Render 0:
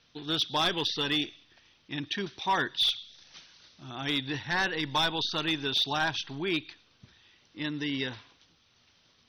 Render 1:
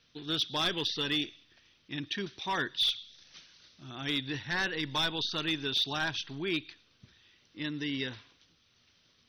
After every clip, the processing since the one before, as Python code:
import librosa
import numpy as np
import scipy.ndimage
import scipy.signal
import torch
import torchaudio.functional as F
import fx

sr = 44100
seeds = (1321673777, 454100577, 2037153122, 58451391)

y = fx.peak_eq(x, sr, hz=840.0, db=-6.0, octaves=0.79)
y = F.gain(torch.from_numpy(y), -2.0).numpy()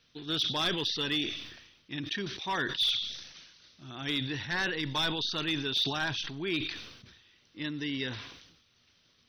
y = fx.sustainer(x, sr, db_per_s=58.0)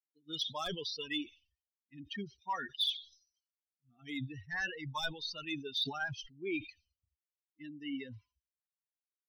y = fx.bin_expand(x, sr, power=3.0)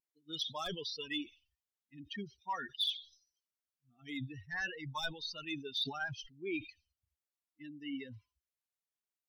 y = fx.vibrato(x, sr, rate_hz=0.63, depth_cents=9.0)
y = F.gain(torch.from_numpy(y), -1.5).numpy()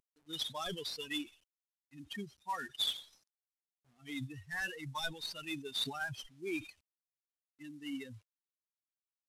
y = fx.cvsd(x, sr, bps=64000)